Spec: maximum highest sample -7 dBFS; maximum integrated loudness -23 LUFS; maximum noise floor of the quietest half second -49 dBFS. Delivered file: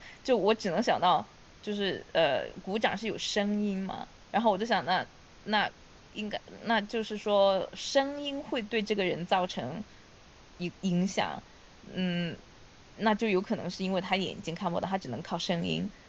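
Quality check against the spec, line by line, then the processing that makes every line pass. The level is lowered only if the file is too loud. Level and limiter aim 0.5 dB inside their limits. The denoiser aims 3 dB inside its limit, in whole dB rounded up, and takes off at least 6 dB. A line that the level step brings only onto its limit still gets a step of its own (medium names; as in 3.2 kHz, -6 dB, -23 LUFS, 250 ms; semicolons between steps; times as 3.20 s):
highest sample -12.5 dBFS: pass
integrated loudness -30.5 LUFS: pass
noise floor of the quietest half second -55 dBFS: pass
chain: none needed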